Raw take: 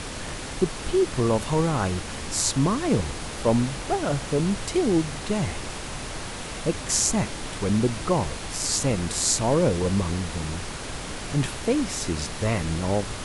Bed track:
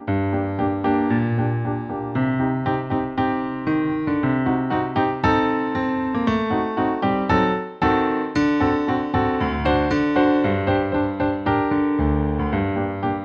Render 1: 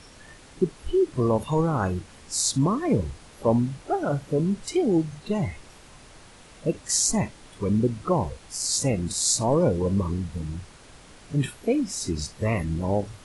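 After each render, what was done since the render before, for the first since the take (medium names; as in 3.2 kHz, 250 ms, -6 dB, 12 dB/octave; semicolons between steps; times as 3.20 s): noise print and reduce 15 dB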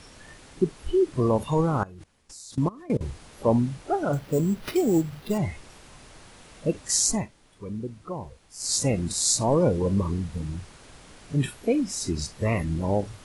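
1.83–3.01 s: level held to a coarse grid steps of 22 dB; 4.13–5.38 s: sample-rate reducer 7.6 kHz; 7.11–8.72 s: dip -11 dB, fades 0.16 s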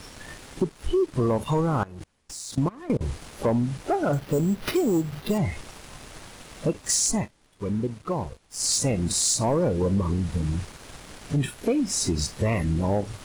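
compression 2.5:1, threshold -30 dBFS, peak gain reduction 9.5 dB; waveshaping leveller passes 2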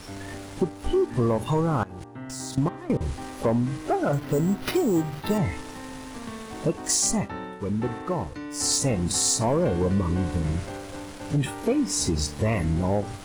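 add bed track -17.5 dB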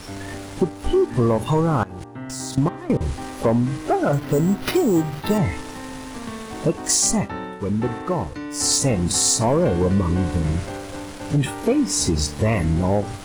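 trim +4.5 dB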